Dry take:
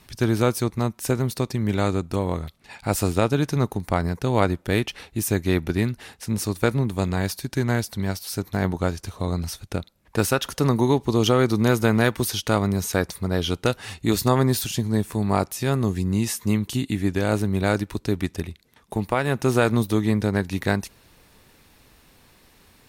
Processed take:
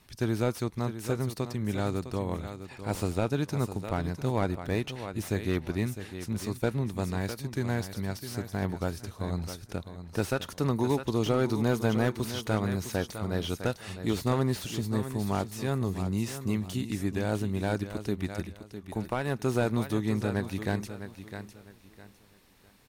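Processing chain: feedback delay 656 ms, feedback 27%, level -11 dB; slew-rate limiter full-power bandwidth 180 Hz; trim -7.5 dB

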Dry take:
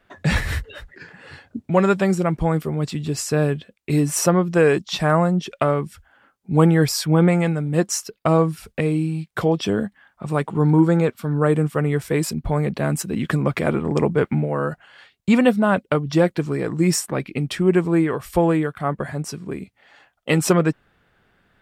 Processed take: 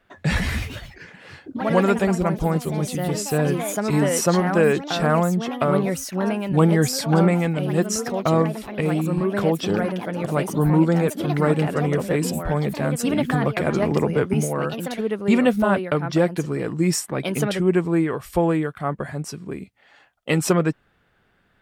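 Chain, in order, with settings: ever faster or slower copies 183 ms, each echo +3 st, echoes 3, each echo -6 dB; 13.82–14.34 s: three bands compressed up and down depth 70%; trim -2 dB

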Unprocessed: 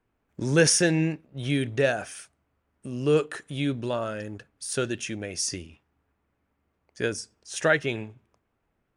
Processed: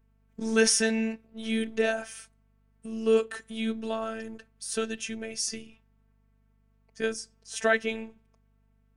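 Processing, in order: robot voice 223 Hz; hum 50 Hz, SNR 35 dB

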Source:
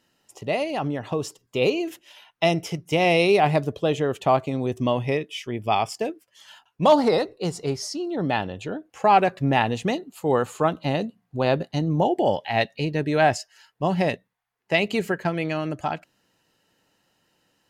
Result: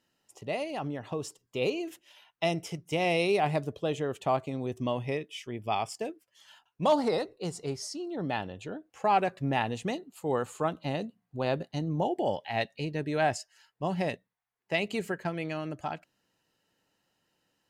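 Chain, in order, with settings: dynamic bell 8.4 kHz, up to +5 dB, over -53 dBFS, Q 2.1; trim -8 dB

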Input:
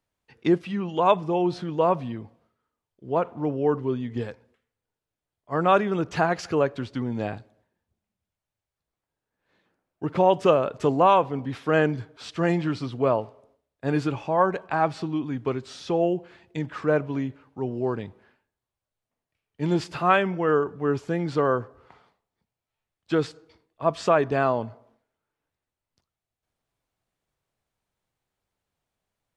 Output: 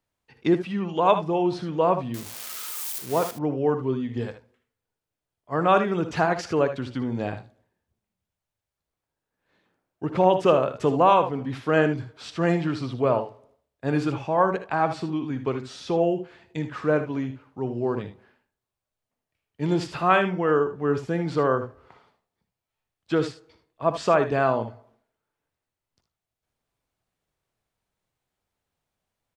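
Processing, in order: 2.14–3.31 s: zero-crossing glitches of -22 dBFS; on a send: early reflections 60 ms -13 dB, 76 ms -12 dB

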